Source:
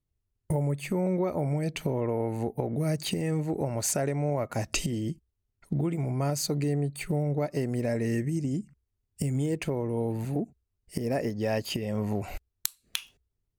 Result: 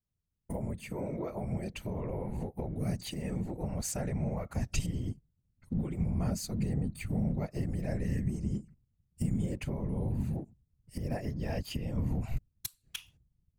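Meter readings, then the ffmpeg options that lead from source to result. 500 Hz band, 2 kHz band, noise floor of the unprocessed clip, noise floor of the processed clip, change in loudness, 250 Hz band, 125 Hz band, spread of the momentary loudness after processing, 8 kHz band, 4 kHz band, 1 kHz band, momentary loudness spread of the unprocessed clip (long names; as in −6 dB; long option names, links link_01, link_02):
−10.0 dB, −8.0 dB, −82 dBFS, −79 dBFS, −5.5 dB, −5.0 dB, −4.0 dB, 8 LU, −8.0 dB, −8.5 dB, −8.5 dB, 7 LU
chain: -af "asubboost=boost=8:cutoff=100,acontrast=83,afftfilt=real='hypot(re,im)*cos(2*PI*random(0))':imag='hypot(re,im)*sin(2*PI*random(1))':win_size=512:overlap=0.75,volume=-9dB"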